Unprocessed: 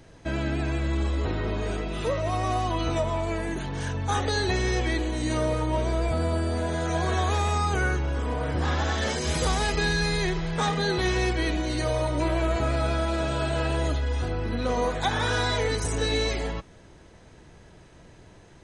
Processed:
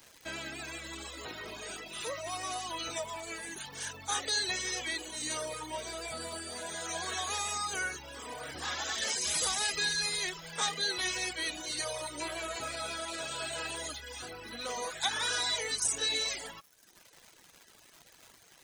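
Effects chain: tilt EQ +4.5 dB/octave; crackle 410 per s -34 dBFS; reverb removal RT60 0.91 s; trim -7.5 dB

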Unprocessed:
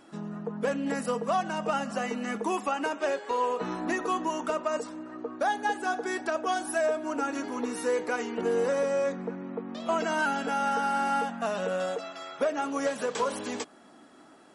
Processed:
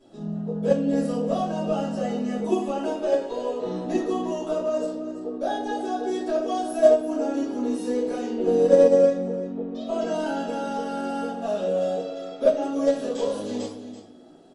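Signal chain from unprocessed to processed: low-pass 4 kHz 6 dB/octave; high-order bell 1.5 kHz -12.5 dB; delay 335 ms -12.5 dB; simulated room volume 97 m³, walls mixed, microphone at 2.8 m; upward expansion 2.5:1, over -15 dBFS

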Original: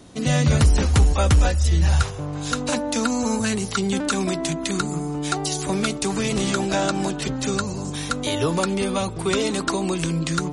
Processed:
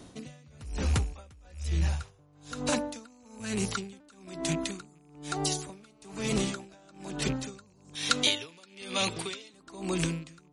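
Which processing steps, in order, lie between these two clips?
rattle on loud lows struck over -25 dBFS, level -26 dBFS; compression, threshold -20 dBFS, peak gain reduction 8.5 dB; 5.80–6.29 s: mobile phone buzz -37 dBFS; 7.95–9.54 s: frequency weighting D; logarithmic tremolo 1.1 Hz, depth 30 dB; trim -2.5 dB

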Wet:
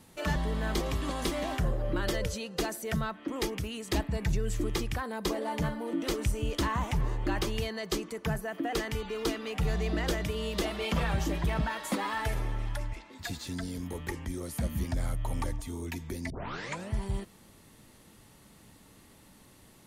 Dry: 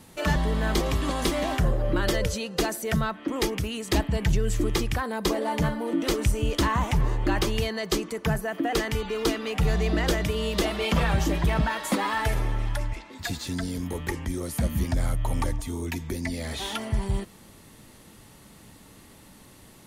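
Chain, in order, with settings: 4.03–4.46 s: band-stop 3.1 kHz, Q 7.4; 16.30 s: tape start 0.62 s; trim -6 dB

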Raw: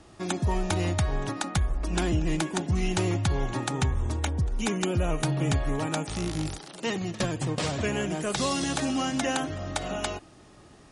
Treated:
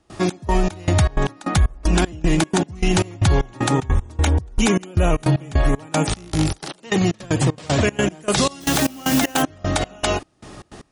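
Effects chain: 8.60–9.41 s: added noise white -38 dBFS; trance gate ".xx..xx..xx.x." 154 bpm -24 dB; loudness maximiser +21.5 dB; trim -7.5 dB

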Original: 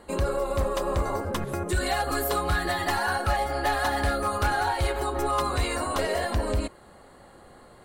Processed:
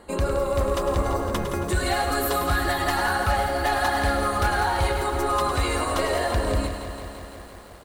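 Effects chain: echo from a far wall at 18 m, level -8 dB; bit-crushed delay 169 ms, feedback 80%, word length 8-bit, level -10 dB; trim +1.5 dB

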